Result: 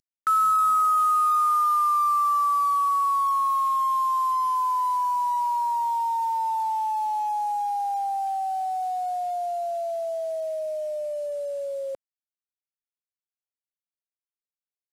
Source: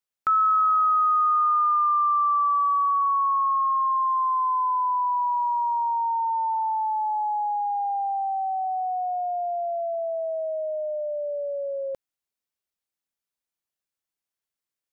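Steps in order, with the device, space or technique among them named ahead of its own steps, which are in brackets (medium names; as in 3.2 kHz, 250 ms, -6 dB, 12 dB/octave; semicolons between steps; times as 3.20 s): early wireless headset (high-pass 280 Hz 6 dB/octave; CVSD coder 64 kbps)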